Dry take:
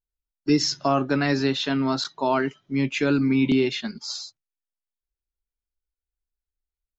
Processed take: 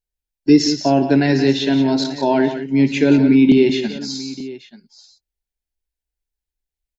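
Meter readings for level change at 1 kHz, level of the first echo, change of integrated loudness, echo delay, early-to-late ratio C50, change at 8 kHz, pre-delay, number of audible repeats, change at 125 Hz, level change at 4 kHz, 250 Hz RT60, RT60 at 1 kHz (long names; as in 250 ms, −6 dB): +3.0 dB, −14.0 dB, +8.0 dB, 58 ms, no reverb audible, can't be measured, no reverb audible, 4, +6.5 dB, +3.5 dB, no reverb audible, no reverb audible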